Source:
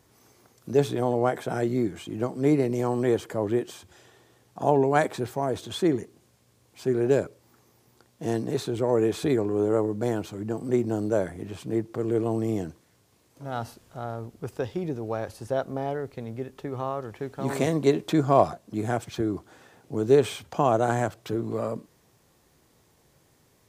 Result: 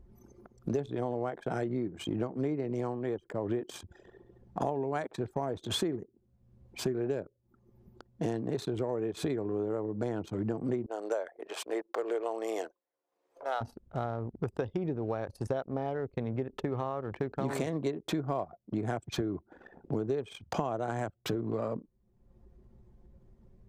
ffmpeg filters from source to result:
-filter_complex "[0:a]asettb=1/sr,asplit=3[a][b][c];[a]atrim=end=10.864[d];[b]atrim=start=10.86:end=13.61,asetpts=PTS-STARTPTS,afade=t=in:d=0.004:c=qsin,afade=t=out:st=2.746:d=0.004:c=qsin,highpass=f=490:w=0.5412,highpass=f=490:w=1.3066[e];[c]atrim=start=13.606[f];[d][e]acrossfade=d=0.004:c1=hsin:c2=qsin[g];[g][f]acrossfade=d=0.004:c1=qsin:c2=hsin,asplit=3[h][i][j];[h]atrim=end=3,asetpts=PTS-STARTPTS,afade=t=out:st=2.74:d=0.26:c=qsin:silence=0.316228[k];[i]atrim=start=3:end=3.44,asetpts=PTS-STARTPTS,volume=-10dB[l];[j]atrim=start=3.44,asetpts=PTS-STARTPTS,afade=t=in:d=0.26:c=qsin:silence=0.316228[m];[k][l][m]concat=n=3:v=0:a=1,acompressor=threshold=-35dB:ratio=16,anlmdn=0.0158,acompressor=mode=upward:threshold=-48dB:ratio=2.5,volume=6.5dB"

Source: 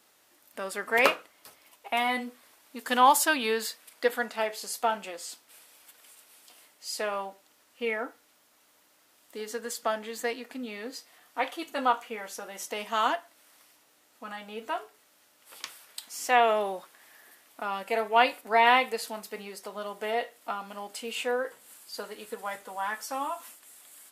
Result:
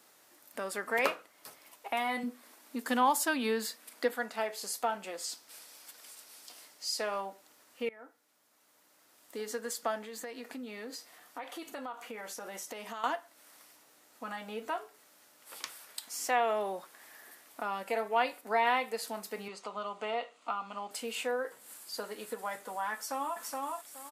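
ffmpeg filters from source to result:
-filter_complex "[0:a]asettb=1/sr,asplit=3[a][b][c];[a]atrim=end=2.234[d];[b]atrim=start=2.23:end=4.13,asetpts=PTS-STARTPTS,afade=t=in:d=0.004:c=qsin,afade=t=out:st=1.896:d=0.004:c=qsin,lowshelf=f=160:t=q:w=3:g=-10.5[e];[c]atrim=start=4.126[f];[d][e]acrossfade=d=0.004:c1=hsin:c2=qsin[g];[g][f]acrossfade=d=0.004:c1=qsin:c2=hsin,asettb=1/sr,asplit=3[h][i][j];[h]atrim=end=5.244[k];[i]atrim=start=5.24:end=7.21,asetpts=PTS-STARTPTS,afade=t=in:d=0.004:c=qsin,afade=t=out:st=1.966:d=0.004:c=qsin,equalizer=f=5.1k:w=1.5:g=6[l];[j]atrim=start=7.206[m];[k][l]acrossfade=d=0.004:c1=hsin:c2=qsin[n];[n][m]acrossfade=d=0.004:c1=qsin:c2=hsin,asettb=1/sr,asplit=3[o][p][q];[o]atrim=end=10.034[r];[p]atrim=start=10.03:end=13.04,asetpts=PTS-STARTPTS,afade=t=in:d=0.004:c=qsin,afade=t=out:st=3.006:d=0.004:c=qsin,acompressor=threshold=-40dB:ratio=4:attack=3.2:release=140:knee=1:detection=peak[s];[q]atrim=start=13.036[t];[r][s]acrossfade=d=0.004:c1=hsin:c2=qsin[u];[u][t]acrossfade=d=0.004:c1=qsin:c2=hsin,asettb=1/sr,asplit=3[v][w][x];[v]atrim=end=19.484[y];[w]atrim=start=19.48:end=20.91,asetpts=PTS-STARTPTS,afade=t=in:d=0.004:c=qsin,afade=t=out:st=1.426:d=0.004:c=qsin,highpass=190,equalizer=f=360:t=q:w=4:g=-7,equalizer=f=550:t=q:w=4:g=-4,equalizer=f=1.2k:t=q:w=4:g=7,equalizer=f=1.7k:t=q:w=4:g=-9,equalizer=f=2.7k:t=q:w=4:g=5,equalizer=f=5.4k:t=q:w=4:g=-8,lowpass=f=6.9k:w=0.5412,lowpass=f=6.9k:w=1.3066[z];[x]atrim=start=20.906[aa];[y][z]acrossfade=d=0.004:c1=hsin:c2=qsin[ab];[ab][aa]acrossfade=d=0.004:c1=qsin:c2=hsin,asplit=2[ac][ad];[ad]afade=t=in:st=22.94:d=0.01,afade=t=out:st=23.39:d=0.01,aecho=0:1:420|840|1260:0.707946|0.106192|0.0159288[ae];[ac][ae]amix=inputs=2:normalize=0,asplit=2[af][ag];[af]atrim=end=7.89,asetpts=PTS-STARTPTS,afade=t=out:st=7.886:d=0.004:c=hsin:silence=0.0794328[ah];[ag]atrim=start=7.89,asetpts=PTS-STARTPTS,afade=t=in:d=1.61:silence=0.0794328[ai];[ah][ai]concat=n=2:v=0:a=1,highpass=96,equalizer=f=3k:t=o:w=0.77:g=-3.5,acompressor=threshold=-42dB:ratio=1.5,volume=2dB"

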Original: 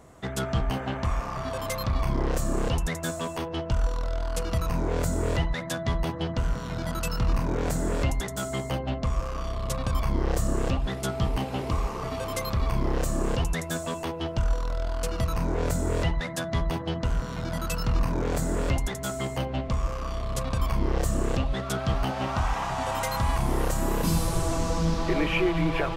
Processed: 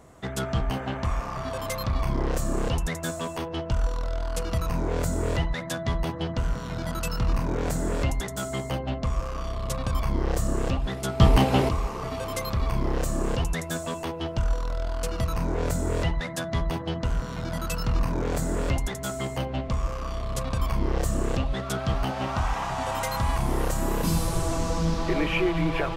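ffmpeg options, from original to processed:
-filter_complex "[0:a]asplit=3[a][b][c];[a]atrim=end=11.202[d];[b]atrim=start=11.198:end=11.692,asetpts=PTS-STARTPTS,volume=9.5dB[e];[c]atrim=start=11.688[f];[d][e]acrossfade=d=0.004:c1=hsin:c2=hsin[g];[g][f]acrossfade=d=0.004:c1=hsin:c2=hsin"

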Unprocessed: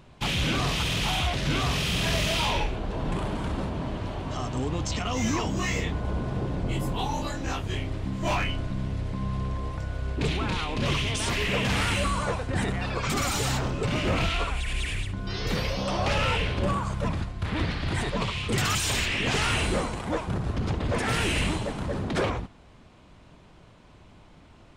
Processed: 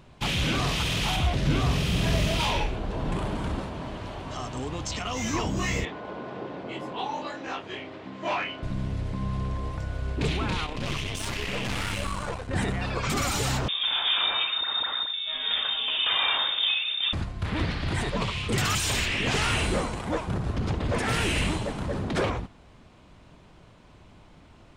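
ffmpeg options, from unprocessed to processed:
-filter_complex "[0:a]asettb=1/sr,asplit=3[a][b][c];[a]atrim=end=1.164[d];[b]atrim=start=1.16:end=2.4,asetpts=PTS-STARTPTS,afade=t=in:d=0.004:c=qsin,afade=t=out:st=1.236:d=0.004:c=qsin,tiltshelf=f=660:g=4[e];[c]atrim=start=2.396[f];[d][e]acrossfade=d=0.004:c1=hsin:c2=qsin[g];[g][f]acrossfade=d=0.004:c1=qsin:c2=hsin,asettb=1/sr,asplit=3[h][i][j];[h]atrim=end=3.594[k];[i]atrim=start=3.59:end=5.34,asetpts=PTS-STARTPTS,afade=t=in:d=0.004:c=qsin,afade=t=out:st=1.746:d=0.004:c=qsin,lowshelf=f=420:g=-6[l];[j]atrim=start=5.336[m];[k][l]acrossfade=d=0.004:c1=hsin:c2=qsin[n];[n][m]acrossfade=d=0.004:c1=qsin:c2=hsin,asettb=1/sr,asplit=3[o][p][q];[o]atrim=end=5.854[r];[p]atrim=start=5.85:end=8.63,asetpts=PTS-STARTPTS,afade=t=in:d=0.004:c=qsin,afade=t=out:st=2.776:d=0.004:c=qsin,highpass=330,lowpass=3.6k[s];[q]atrim=start=8.626[t];[r][s]acrossfade=d=0.004:c1=hsin:c2=qsin[u];[u][t]acrossfade=d=0.004:c1=qsin:c2=hsin,asettb=1/sr,asplit=3[v][w][x];[v]atrim=end=10.664[y];[w]atrim=start=10.66:end=12.51,asetpts=PTS-STARTPTS,afade=t=in:d=0.004:c=qsin,afade=t=out:st=1.846:d=0.004:c=qsin,aeval=exprs='(tanh(17.8*val(0)+0.8)-tanh(0.8))/17.8':c=same[z];[x]atrim=start=12.506[aa];[y][z]acrossfade=d=0.004:c1=hsin:c2=qsin[ab];[ab][aa]acrossfade=d=0.004:c1=qsin:c2=hsin,asettb=1/sr,asplit=3[ac][ad][ae];[ac]atrim=end=13.684[af];[ad]atrim=start=13.68:end=17.13,asetpts=PTS-STARTPTS,afade=t=in:d=0.004:c=qsin,afade=t=out:st=3.446:d=0.004:c=qsin,lowpass=f=3.1k:t=q:w=0.5098,lowpass=f=3.1k:t=q:w=0.6013,lowpass=f=3.1k:t=q:w=0.9,lowpass=f=3.1k:t=q:w=2.563,afreqshift=-3700[ag];[ae]atrim=start=17.126[ah];[af][ag]acrossfade=d=0.004:c1=hsin:c2=qsin[ai];[ai][ah]acrossfade=d=0.004:c1=qsin:c2=hsin"

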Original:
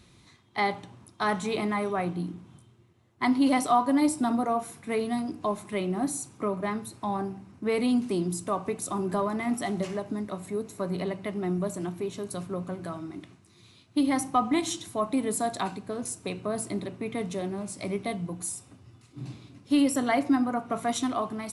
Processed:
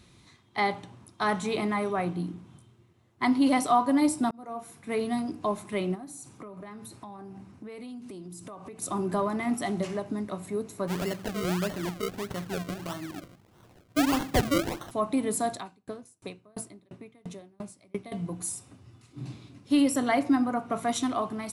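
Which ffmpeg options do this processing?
-filter_complex "[0:a]asplit=3[a][b][c];[a]afade=t=out:st=5.94:d=0.02[d];[b]acompressor=threshold=-39dB:ratio=10:attack=3.2:release=140:knee=1:detection=peak,afade=t=in:st=5.94:d=0.02,afade=t=out:st=8.81:d=0.02[e];[c]afade=t=in:st=8.81:d=0.02[f];[d][e][f]amix=inputs=3:normalize=0,asplit=3[g][h][i];[g]afade=t=out:st=10.87:d=0.02[j];[h]acrusher=samples=35:mix=1:aa=0.000001:lfo=1:lforange=35:lforate=1.6,afade=t=in:st=10.87:d=0.02,afade=t=out:st=14.9:d=0.02[k];[i]afade=t=in:st=14.9:d=0.02[l];[j][k][l]amix=inputs=3:normalize=0,asettb=1/sr,asplit=3[m][n][o];[m]atrim=end=15.534[p];[n]atrim=start=15.53:end=18.12,asetpts=PTS-STARTPTS,afade=t=in:d=0.004:c=qsin,afade=t=out:st=2.586:d=0.004:c=qsin,aeval=exprs='val(0)*pow(10,-35*if(lt(mod(2.9*n/s,1),2*abs(2.9)/1000),1-mod(2.9*n/s,1)/(2*abs(2.9)/1000),(mod(2.9*n/s,1)-2*abs(2.9)/1000)/(1-2*abs(2.9)/1000))/20)':c=same[q];[o]atrim=start=18.116[r];[p][q]acrossfade=d=0.004:c1=hsin:c2=qsin[s];[s][r]acrossfade=d=0.004:c1=qsin:c2=hsin,asplit=2[t][u];[t]atrim=end=4.31,asetpts=PTS-STARTPTS,afade=t=out:st=4.306:d=0.004:c=hsin[v];[u]atrim=start=4.31,asetpts=PTS-STARTPTS,afade=t=in:d=0.73[w];[v][w]concat=n=2:v=0:a=1"

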